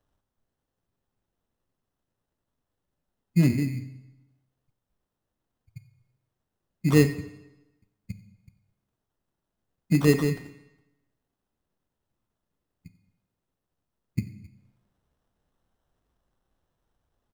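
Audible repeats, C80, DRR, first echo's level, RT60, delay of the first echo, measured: 1, 14.0 dB, 9.5 dB, -21.0 dB, 1.0 s, 91 ms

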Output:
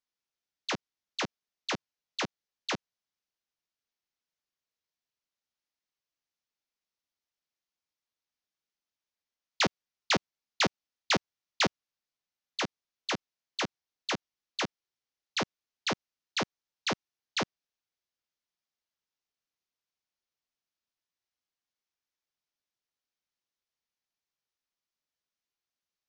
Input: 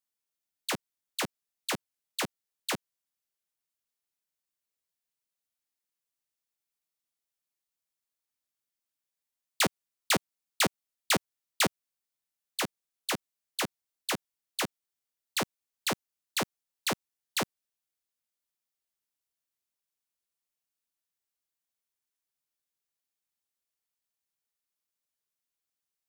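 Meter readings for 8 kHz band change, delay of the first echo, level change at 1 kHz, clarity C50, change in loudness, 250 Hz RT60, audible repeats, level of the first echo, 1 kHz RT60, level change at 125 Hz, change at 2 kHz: -6.0 dB, none, 0.0 dB, none, -1.0 dB, none, none, none, none, 0.0 dB, 0.0 dB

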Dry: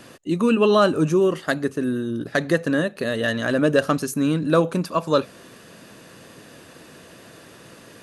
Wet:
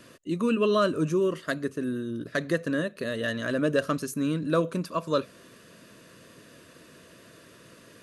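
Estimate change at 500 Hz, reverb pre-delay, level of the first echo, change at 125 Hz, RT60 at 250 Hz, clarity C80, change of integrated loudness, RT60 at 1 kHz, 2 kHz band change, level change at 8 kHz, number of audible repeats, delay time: -6.5 dB, none, none, -6.5 dB, none, none, -6.5 dB, none, -6.5 dB, -6.5 dB, none, none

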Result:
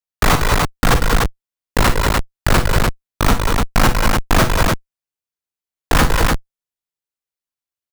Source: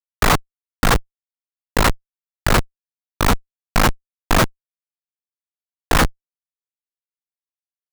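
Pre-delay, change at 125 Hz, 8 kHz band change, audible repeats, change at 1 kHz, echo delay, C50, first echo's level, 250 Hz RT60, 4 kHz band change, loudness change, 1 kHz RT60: none, +5.5 dB, +3.0 dB, 3, +3.0 dB, 45 ms, none, -11.5 dB, none, +3.0 dB, +2.5 dB, none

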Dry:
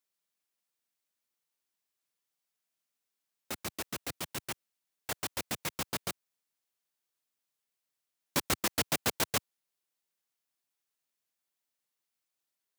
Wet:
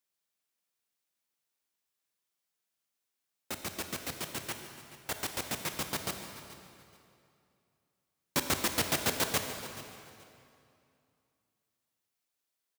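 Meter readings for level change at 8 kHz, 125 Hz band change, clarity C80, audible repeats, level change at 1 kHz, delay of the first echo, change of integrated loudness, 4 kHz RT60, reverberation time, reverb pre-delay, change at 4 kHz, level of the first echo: +1.0 dB, +1.0 dB, 6.5 dB, 2, +1.0 dB, 0.429 s, +0.5 dB, 2.1 s, 2.6 s, 26 ms, +1.0 dB, -16.5 dB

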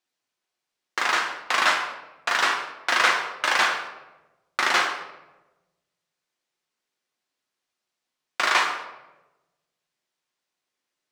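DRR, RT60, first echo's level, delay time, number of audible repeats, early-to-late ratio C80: 1.5 dB, 1.1 s, none, none, none, 9.5 dB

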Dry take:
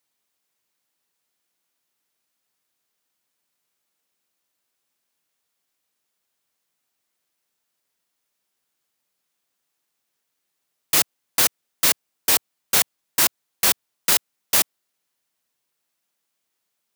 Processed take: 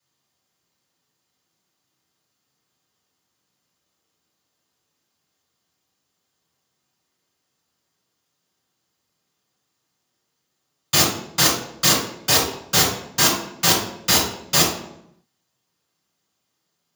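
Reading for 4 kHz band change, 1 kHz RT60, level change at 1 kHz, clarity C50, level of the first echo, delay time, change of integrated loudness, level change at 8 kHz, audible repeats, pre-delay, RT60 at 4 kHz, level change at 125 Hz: +5.5 dB, 0.70 s, +6.5 dB, 2.5 dB, none, none, +1.5 dB, +2.5 dB, none, 3 ms, 0.55 s, +15.0 dB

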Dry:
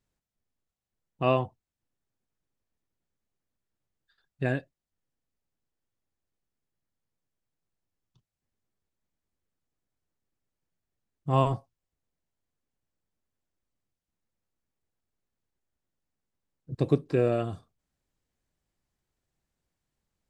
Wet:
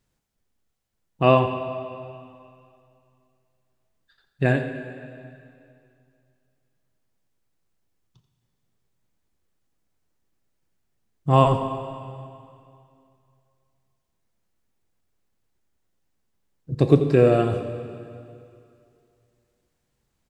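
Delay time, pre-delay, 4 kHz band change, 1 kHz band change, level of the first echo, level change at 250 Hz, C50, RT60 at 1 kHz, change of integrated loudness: 86 ms, 7 ms, +8.5 dB, +8.5 dB, -13.5 dB, +8.5 dB, 7.0 dB, 2.5 s, +7.0 dB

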